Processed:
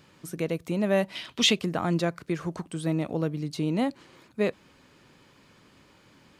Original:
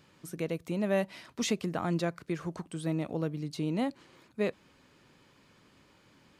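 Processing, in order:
0:01.15–0:01.59: parametric band 3,200 Hz +13.5 dB 0.83 octaves
level +4.5 dB

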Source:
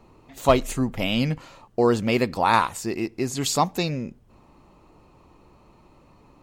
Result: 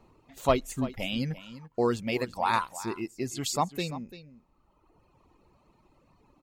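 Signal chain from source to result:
reverb reduction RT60 1.6 s
single-tap delay 341 ms −15 dB
level −6 dB

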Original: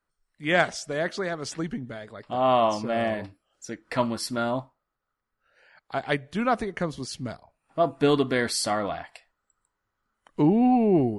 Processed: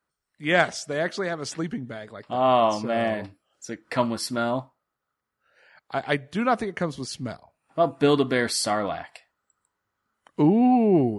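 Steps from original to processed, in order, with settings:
high-pass filter 77 Hz
level +1.5 dB

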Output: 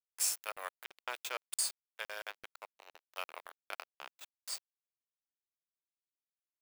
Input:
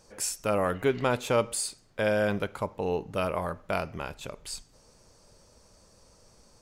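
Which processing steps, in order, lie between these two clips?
first difference
dead-zone distortion −45 dBFS
Bessel high-pass filter 620 Hz, order 4
parametric band 9,400 Hz −13.5 dB 2.1 octaves
regular buffer underruns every 0.17 s, samples 2,048, zero, from 0:00.52
level +12 dB

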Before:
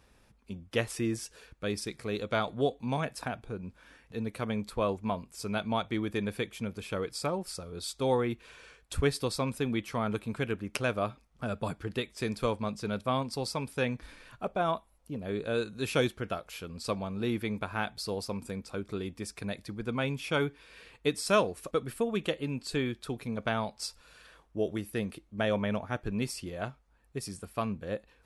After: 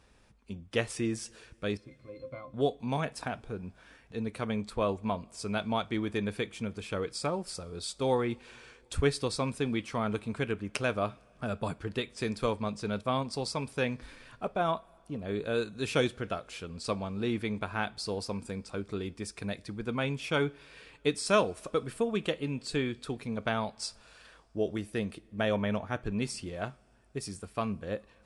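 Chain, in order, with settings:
0:01.77–0:02.54: resonances in every octave C, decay 0.13 s
coupled-rooms reverb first 0.23 s, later 3.3 s, from −21 dB, DRR 18.5 dB
Ogg Vorbis 64 kbit/s 22,050 Hz

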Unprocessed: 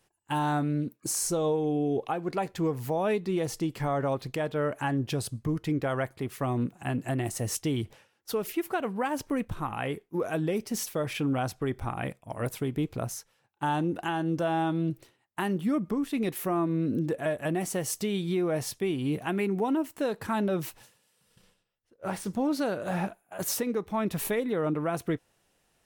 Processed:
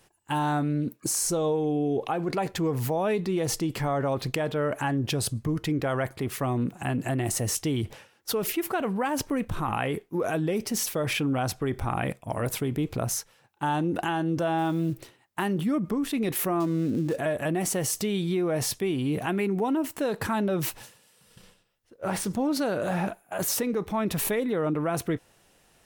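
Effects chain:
0:16.60–0:17.19: gap after every zero crossing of 0.1 ms
in parallel at −2 dB: compressor whose output falls as the input rises −37 dBFS, ratio −1
0:14.58–0:15.45: on the sum: floating-point word with a short mantissa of 4 bits

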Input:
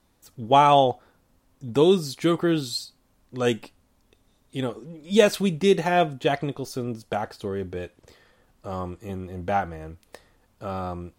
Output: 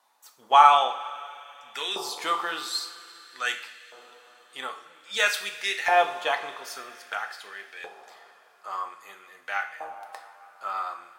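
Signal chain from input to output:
coupled-rooms reverb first 0.46 s, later 4.3 s, from −16 dB, DRR 5 dB
auto-filter high-pass saw up 0.51 Hz 840–1,900 Hz
level −1 dB

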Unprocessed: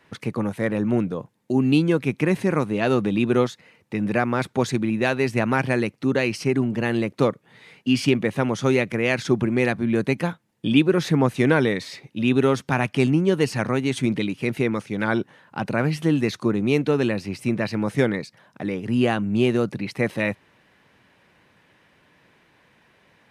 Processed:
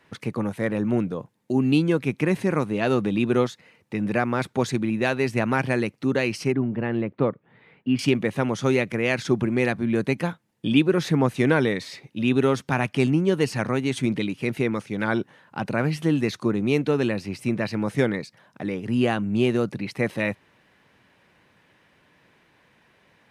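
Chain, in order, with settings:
0:06.52–0:07.99: high-frequency loss of the air 500 metres
level −1.5 dB

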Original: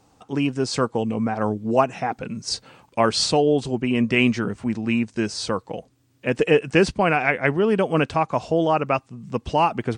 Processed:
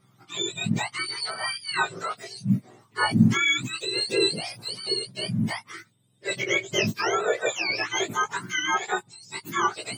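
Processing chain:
frequency axis turned over on the octave scale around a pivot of 1,000 Hz
chorus effect 0.8 Hz, delay 15.5 ms, depth 3 ms

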